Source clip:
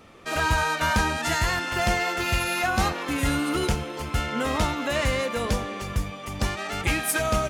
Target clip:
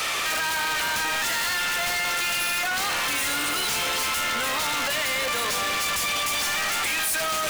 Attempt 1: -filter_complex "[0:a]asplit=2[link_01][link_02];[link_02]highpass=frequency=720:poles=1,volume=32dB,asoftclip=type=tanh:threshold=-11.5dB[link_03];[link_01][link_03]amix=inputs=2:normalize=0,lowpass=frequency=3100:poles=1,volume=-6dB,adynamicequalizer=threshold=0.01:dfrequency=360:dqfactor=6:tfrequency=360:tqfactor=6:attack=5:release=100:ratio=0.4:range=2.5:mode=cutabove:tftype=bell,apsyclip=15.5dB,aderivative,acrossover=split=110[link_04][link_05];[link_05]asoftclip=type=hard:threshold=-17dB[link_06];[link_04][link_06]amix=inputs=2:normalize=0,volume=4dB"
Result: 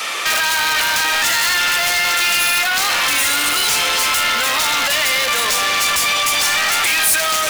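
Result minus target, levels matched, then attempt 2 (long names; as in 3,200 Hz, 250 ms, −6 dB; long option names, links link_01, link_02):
hard clipping: distortion −5 dB
-filter_complex "[0:a]asplit=2[link_01][link_02];[link_02]highpass=frequency=720:poles=1,volume=32dB,asoftclip=type=tanh:threshold=-11.5dB[link_03];[link_01][link_03]amix=inputs=2:normalize=0,lowpass=frequency=3100:poles=1,volume=-6dB,adynamicequalizer=threshold=0.01:dfrequency=360:dqfactor=6:tfrequency=360:tqfactor=6:attack=5:release=100:ratio=0.4:range=2.5:mode=cutabove:tftype=bell,apsyclip=15.5dB,aderivative,acrossover=split=110[link_04][link_05];[link_05]asoftclip=type=hard:threshold=-28.5dB[link_06];[link_04][link_06]amix=inputs=2:normalize=0,volume=4dB"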